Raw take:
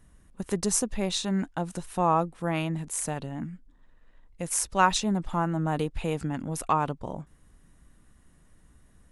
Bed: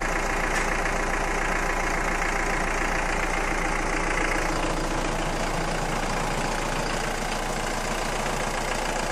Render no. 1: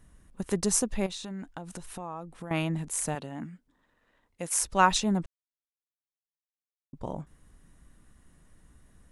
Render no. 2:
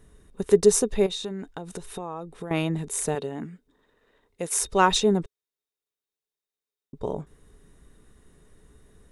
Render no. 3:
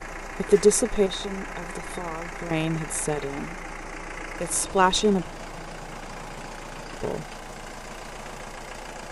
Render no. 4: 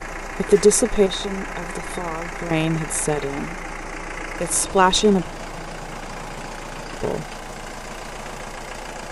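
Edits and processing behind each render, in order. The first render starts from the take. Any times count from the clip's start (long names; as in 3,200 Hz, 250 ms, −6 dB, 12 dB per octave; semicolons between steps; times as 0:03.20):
0:01.06–0:02.51: downward compressor 5 to 1, threshold −36 dBFS; 0:03.15–0:04.60: high-pass filter 260 Hz 6 dB per octave; 0:05.26–0:06.93: silence
in parallel at −10.5 dB: soft clipping −20 dBFS, distortion −10 dB; on the sum: hollow resonant body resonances 420/3,700 Hz, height 15 dB, ringing for 55 ms
mix in bed −11 dB
level +5 dB; brickwall limiter −3 dBFS, peak gain reduction 2.5 dB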